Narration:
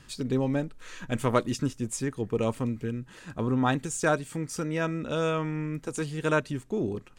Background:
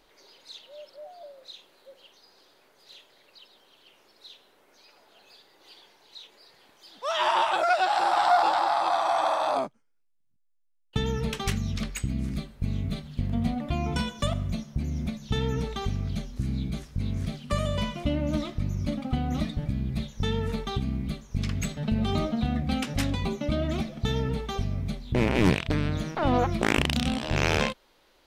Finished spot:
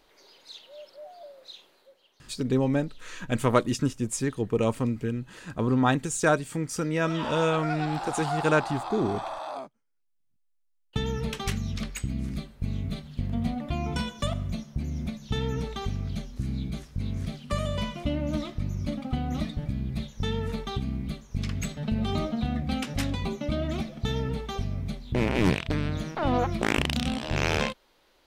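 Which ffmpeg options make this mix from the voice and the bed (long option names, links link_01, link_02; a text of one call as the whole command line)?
ffmpeg -i stem1.wav -i stem2.wav -filter_complex "[0:a]adelay=2200,volume=2.5dB[link_01];[1:a]volume=8dB,afade=type=out:start_time=1.65:duration=0.34:silence=0.334965,afade=type=in:start_time=9.72:duration=0.55:silence=0.375837[link_02];[link_01][link_02]amix=inputs=2:normalize=0" out.wav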